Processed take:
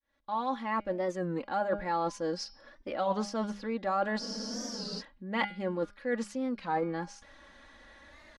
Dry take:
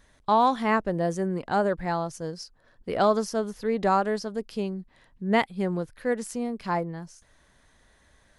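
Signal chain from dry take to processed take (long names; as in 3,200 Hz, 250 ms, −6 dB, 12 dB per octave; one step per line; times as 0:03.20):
fade in at the beginning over 1.53 s
comb filter 3.6 ms, depth 77%
hum removal 203.2 Hz, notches 28
reversed playback
downward compressor 6 to 1, threshold −34 dBFS, peak gain reduction 17.5 dB
reversed playback
low-pass filter 4,200 Hz 12 dB per octave
low-shelf EQ 180 Hz −9.5 dB
frozen spectrum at 0:04.23, 0.78 s
wow of a warped record 33 1/3 rpm, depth 160 cents
level +6.5 dB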